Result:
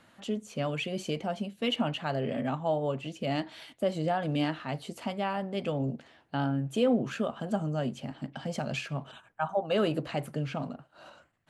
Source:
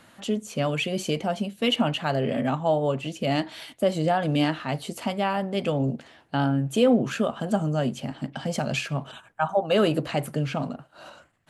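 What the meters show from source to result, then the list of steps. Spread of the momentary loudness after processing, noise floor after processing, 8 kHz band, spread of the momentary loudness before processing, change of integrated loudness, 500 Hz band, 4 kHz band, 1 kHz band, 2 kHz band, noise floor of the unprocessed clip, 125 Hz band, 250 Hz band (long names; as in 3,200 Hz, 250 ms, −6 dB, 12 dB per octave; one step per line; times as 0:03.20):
9 LU, −63 dBFS, −9.5 dB, 9 LU, −6.0 dB, −6.0 dB, −7.0 dB, −6.0 dB, −6.5 dB, −57 dBFS, −6.0 dB, −6.0 dB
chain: high-shelf EQ 8,200 Hz −8 dB
level −6 dB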